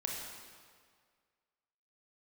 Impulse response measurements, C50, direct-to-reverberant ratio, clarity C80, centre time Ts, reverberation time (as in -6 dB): 1.0 dB, -1.0 dB, 2.5 dB, 85 ms, 1.9 s